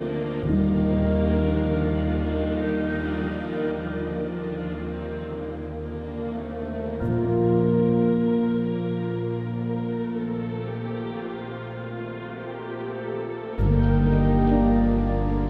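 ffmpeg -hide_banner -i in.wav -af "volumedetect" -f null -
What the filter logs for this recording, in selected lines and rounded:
mean_volume: -24.0 dB
max_volume: -9.0 dB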